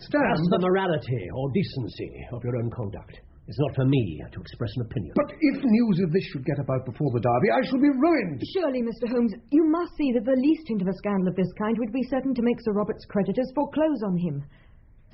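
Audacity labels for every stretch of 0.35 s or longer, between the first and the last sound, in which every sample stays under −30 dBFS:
2.980000	3.500000	silence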